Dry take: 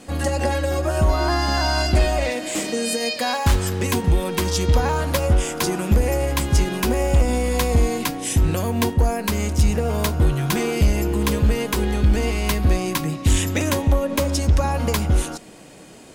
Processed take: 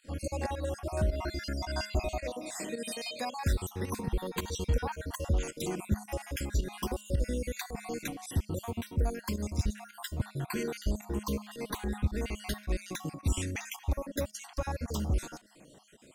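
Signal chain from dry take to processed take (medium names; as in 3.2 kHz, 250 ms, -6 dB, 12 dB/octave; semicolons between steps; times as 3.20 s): random holes in the spectrogram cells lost 51%; feedback comb 210 Hz, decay 0.51 s, harmonics odd, mix 50%; volume shaper 109 bpm, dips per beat 1, -12 dB, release 98 ms; trim -5 dB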